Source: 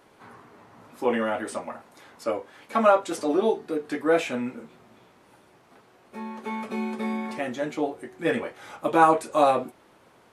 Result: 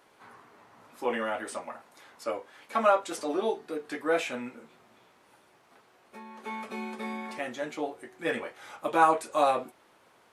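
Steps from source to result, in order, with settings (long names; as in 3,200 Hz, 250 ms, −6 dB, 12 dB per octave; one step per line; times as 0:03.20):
low-shelf EQ 420 Hz −9 dB
0:04.48–0:06.40: downward compressor, threshold −40 dBFS, peak gain reduction 4.5 dB
level −2 dB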